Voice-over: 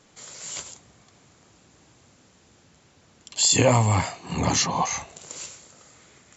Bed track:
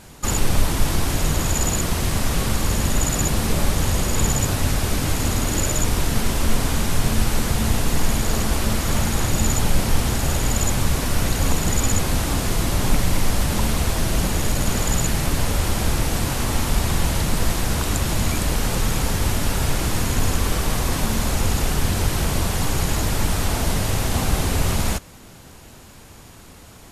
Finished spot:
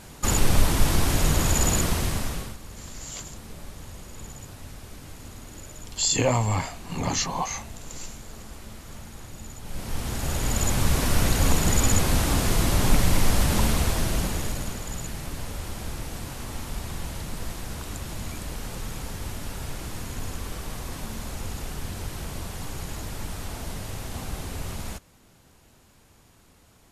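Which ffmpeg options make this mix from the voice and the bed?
-filter_complex "[0:a]adelay=2600,volume=0.631[s0];[1:a]volume=8.91,afade=t=out:st=1.79:d=0.78:silence=0.1,afade=t=in:st=9.62:d=1.43:silence=0.1,afade=t=out:st=13.59:d=1.2:silence=0.251189[s1];[s0][s1]amix=inputs=2:normalize=0"

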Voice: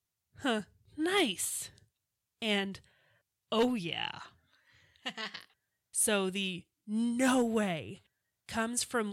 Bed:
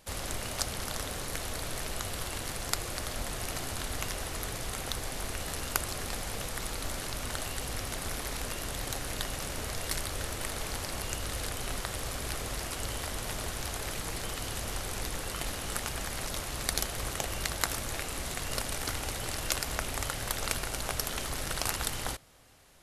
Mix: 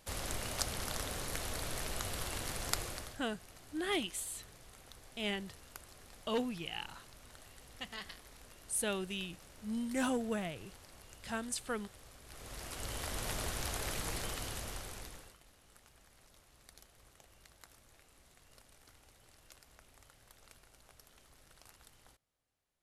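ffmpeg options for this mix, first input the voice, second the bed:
-filter_complex "[0:a]adelay=2750,volume=0.501[s0];[1:a]volume=5.31,afade=t=out:st=2.78:d=0.42:silence=0.141254,afade=t=in:st=12.26:d=1.01:silence=0.125893,afade=t=out:st=14.12:d=1.26:silence=0.0530884[s1];[s0][s1]amix=inputs=2:normalize=0"

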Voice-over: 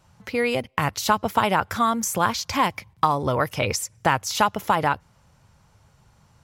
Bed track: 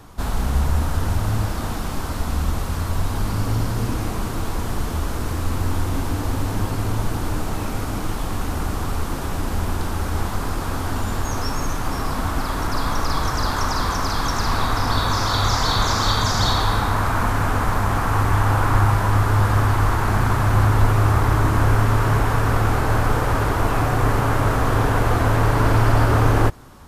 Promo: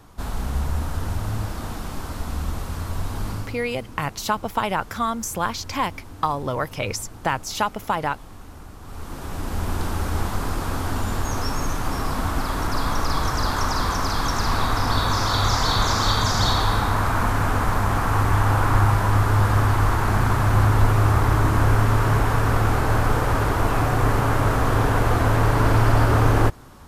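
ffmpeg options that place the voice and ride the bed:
-filter_complex "[0:a]adelay=3200,volume=0.708[s0];[1:a]volume=3.55,afade=t=out:st=3.31:d=0.27:silence=0.251189,afade=t=in:st=8.81:d=1.02:silence=0.158489[s1];[s0][s1]amix=inputs=2:normalize=0"

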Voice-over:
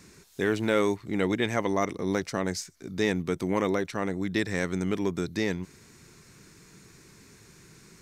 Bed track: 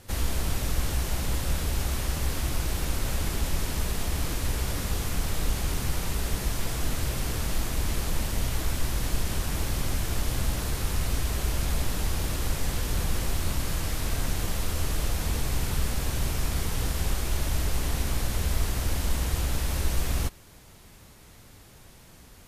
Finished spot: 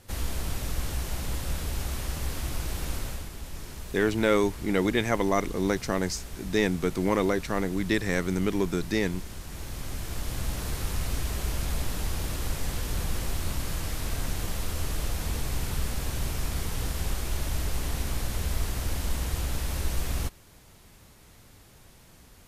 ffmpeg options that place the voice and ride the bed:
-filter_complex "[0:a]adelay=3550,volume=1.19[s0];[1:a]volume=1.88,afade=t=out:st=2.96:d=0.33:silence=0.398107,afade=t=in:st=9.44:d=1.29:silence=0.354813[s1];[s0][s1]amix=inputs=2:normalize=0"

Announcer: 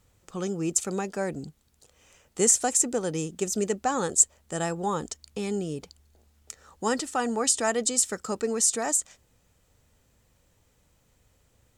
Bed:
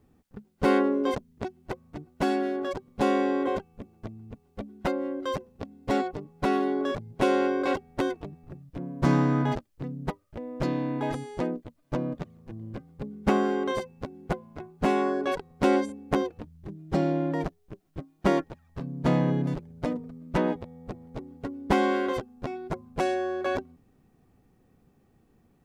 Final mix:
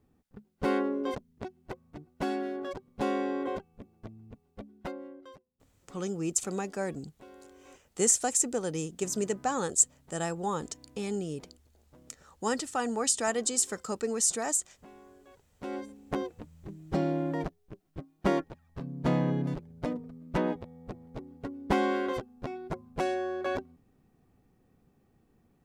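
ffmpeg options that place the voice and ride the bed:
-filter_complex "[0:a]adelay=5600,volume=0.668[s0];[1:a]volume=9.44,afade=t=out:st=4.45:d=0.98:silence=0.0707946,afade=t=in:st=15.48:d=1.04:silence=0.0530884[s1];[s0][s1]amix=inputs=2:normalize=0"

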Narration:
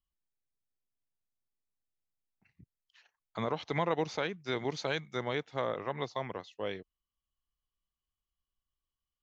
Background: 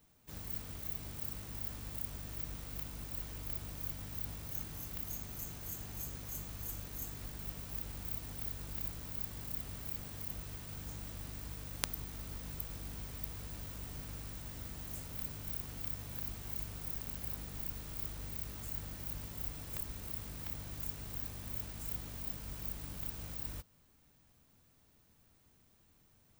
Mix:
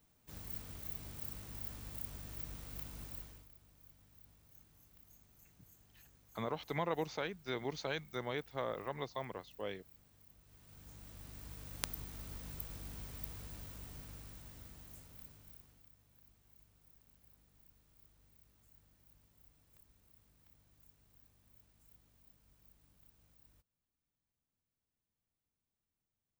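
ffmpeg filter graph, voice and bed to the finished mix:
-filter_complex "[0:a]adelay=3000,volume=0.531[s0];[1:a]volume=5.31,afade=t=out:st=3.05:d=0.44:silence=0.133352,afade=t=in:st=10.43:d=1.43:silence=0.125893,afade=t=out:st=13.28:d=2.61:silence=0.0841395[s1];[s0][s1]amix=inputs=2:normalize=0"

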